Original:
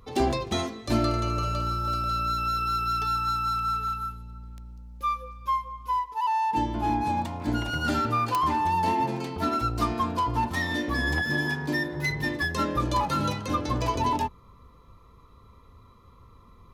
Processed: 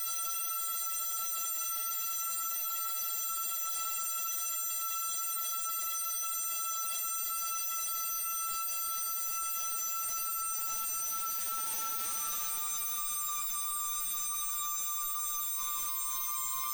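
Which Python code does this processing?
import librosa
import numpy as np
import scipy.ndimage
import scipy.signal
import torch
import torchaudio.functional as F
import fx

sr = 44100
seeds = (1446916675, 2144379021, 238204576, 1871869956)

y = scipy.signal.sosfilt(scipy.signal.butter(2, 1400.0, 'highpass', fs=sr, output='sos'), x)
y = fx.high_shelf(y, sr, hz=7500.0, db=-3.0)
y = (np.kron(scipy.signal.resample_poly(y, 1, 6), np.eye(6)[0]) * 6)[:len(y)]
y = fx.tube_stage(y, sr, drive_db=21.0, bias=0.45)
y = fx.quant_companded(y, sr, bits=4)
y = fx.paulstretch(y, sr, seeds[0], factor=6.1, window_s=1.0, from_s=2.61)
y = fx.env_flatten(y, sr, amount_pct=100)
y = y * librosa.db_to_amplitude(-9.0)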